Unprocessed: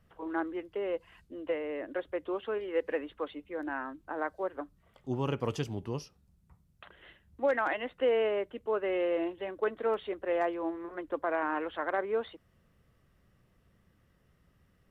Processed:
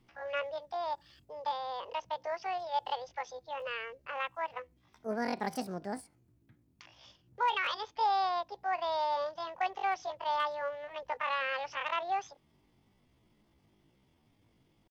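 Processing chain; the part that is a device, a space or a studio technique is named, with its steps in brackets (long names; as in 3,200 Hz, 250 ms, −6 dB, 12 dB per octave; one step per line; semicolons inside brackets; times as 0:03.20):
chipmunk voice (pitch shifter +9.5 semitones)
level −2 dB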